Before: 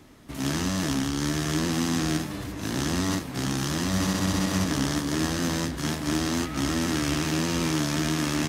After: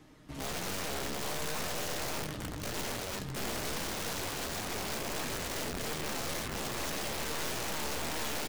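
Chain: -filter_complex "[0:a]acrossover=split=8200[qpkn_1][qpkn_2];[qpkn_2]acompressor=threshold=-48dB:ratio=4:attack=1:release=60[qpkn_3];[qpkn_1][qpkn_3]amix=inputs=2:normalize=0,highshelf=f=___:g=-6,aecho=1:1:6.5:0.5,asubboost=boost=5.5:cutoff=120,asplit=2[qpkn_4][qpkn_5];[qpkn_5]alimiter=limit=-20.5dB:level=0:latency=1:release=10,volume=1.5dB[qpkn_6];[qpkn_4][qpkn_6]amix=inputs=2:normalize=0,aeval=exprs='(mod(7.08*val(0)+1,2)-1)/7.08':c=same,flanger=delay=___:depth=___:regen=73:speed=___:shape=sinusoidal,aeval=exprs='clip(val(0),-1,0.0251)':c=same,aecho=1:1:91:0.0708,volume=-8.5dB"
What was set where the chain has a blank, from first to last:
8500, 8.5, 7.1, 1.7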